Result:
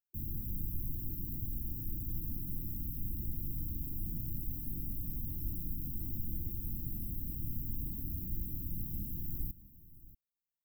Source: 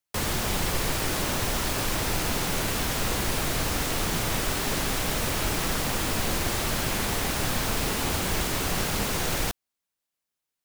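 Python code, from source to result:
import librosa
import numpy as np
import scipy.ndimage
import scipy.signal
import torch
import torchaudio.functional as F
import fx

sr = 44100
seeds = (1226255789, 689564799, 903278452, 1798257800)

y = fx.brickwall_bandstop(x, sr, low_hz=360.0, high_hz=13000.0)
y = fx.peak_eq(y, sr, hz=620.0, db=-14.0, octaves=2.9)
y = y + 10.0 ** (-18.0 / 20.0) * np.pad(y, (int(635 * sr / 1000.0), 0))[:len(y)]
y = y * 10.0 ** (-6.0 / 20.0)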